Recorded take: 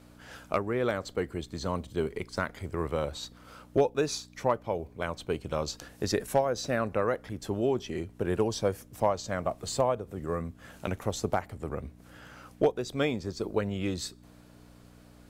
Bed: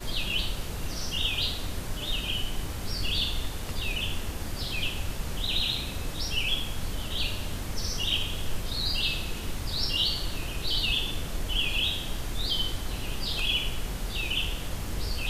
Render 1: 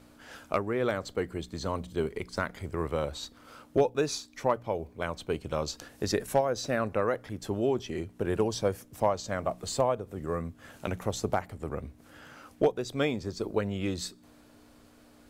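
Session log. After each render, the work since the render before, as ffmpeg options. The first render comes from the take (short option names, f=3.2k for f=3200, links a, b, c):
-af "bandreject=f=60:t=h:w=4,bandreject=f=120:t=h:w=4,bandreject=f=180:t=h:w=4"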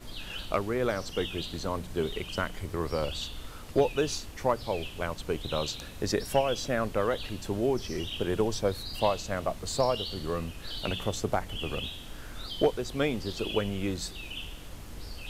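-filter_complex "[1:a]volume=-10.5dB[a];[0:a][a]amix=inputs=2:normalize=0"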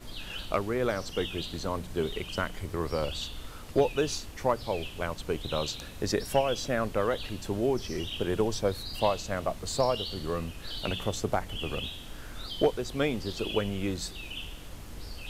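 -af anull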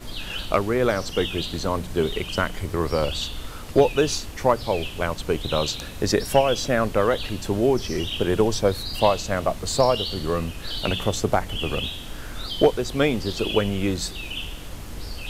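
-af "volume=7.5dB"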